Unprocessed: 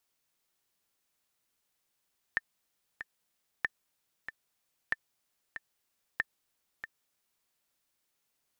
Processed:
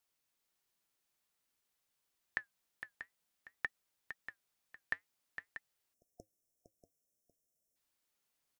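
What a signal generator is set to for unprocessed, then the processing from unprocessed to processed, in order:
metronome 94 bpm, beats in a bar 2, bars 4, 1790 Hz, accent 11 dB -15 dBFS
flange 0.53 Hz, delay 1.3 ms, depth 5.5 ms, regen -77%; on a send: echo 0.459 s -9.5 dB; on the sum: spectral delete 5.94–7.76, 720–5200 Hz

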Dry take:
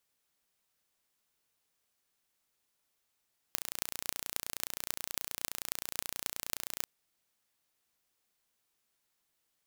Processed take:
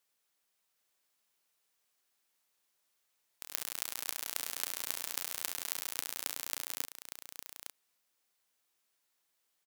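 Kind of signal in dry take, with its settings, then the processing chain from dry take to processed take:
pulse train 29.5/s, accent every 8, -4 dBFS 3.29 s
low shelf 210 Hz -11 dB; echoes that change speed 0.763 s, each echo +5 st, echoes 3, each echo -6 dB; on a send: echo 0.859 s -9 dB

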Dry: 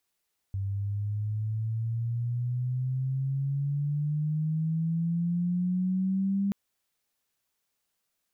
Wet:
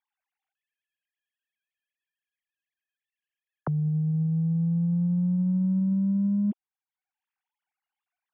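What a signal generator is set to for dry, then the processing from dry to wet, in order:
chirp logarithmic 97 Hz -> 200 Hz -28 dBFS -> -24 dBFS 5.98 s
sine-wave speech; in parallel at -12 dB: soft clip -30.5 dBFS; on the sum: three-band squash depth 40%

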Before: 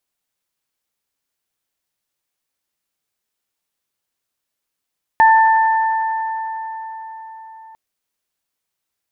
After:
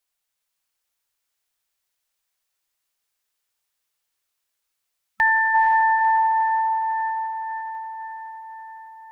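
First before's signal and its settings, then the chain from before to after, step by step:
additive tone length 2.55 s, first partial 889 Hz, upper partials -7 dB, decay 4.90 s, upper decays 3.68 s, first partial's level -7 dB
spectral gain 5.1–5.54, 200–1300 Hz -9 dB; bell 210 Hz -12 dB 2.3 oct; on a send: diffused feedback echo 0.488 s, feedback 57%, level -4 dB

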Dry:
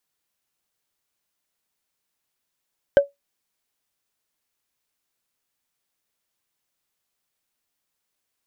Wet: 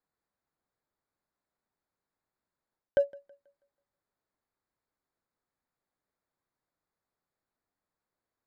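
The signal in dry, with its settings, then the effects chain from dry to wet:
wood hit, lowest mode 564 Hz, decay 0.16 s, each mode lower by 11 dB, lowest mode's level -5.5 dB
Wiener smoothing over 15 samples; reverse; compressor, threshold -23 dBFS; reverse; thinning echo 0.162 s, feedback 35%, high-pass 160 Hz, level -23 dB

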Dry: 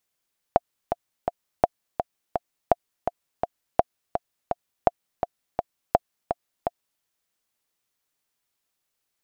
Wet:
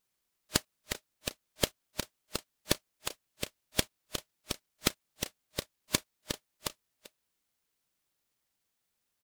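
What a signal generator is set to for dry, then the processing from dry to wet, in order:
metronome 167 bpm, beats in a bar 3, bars 6, 699 Hz, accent 7.5 dB -2.5 dBFS
FFT band-reject 620–1500 Hz; speakerphone echo 0.39 s, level -16 dB; noise-modulated delay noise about 3400 Hz, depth 0.43 ms

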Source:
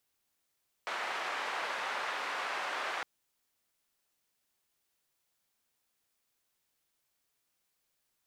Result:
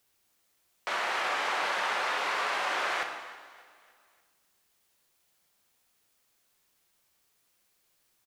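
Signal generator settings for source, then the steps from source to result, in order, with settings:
noise band 740–1600 Hz, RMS -36.5 dBFS 2.16 s
in parallel at +1 dB: limiter -31.5 dBFS; on the sum: feedback echo 0.294 s, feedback 47%, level -19.5 dB; plate-style reverb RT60 1.5 s, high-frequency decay 0.85×, DRR 4 dB

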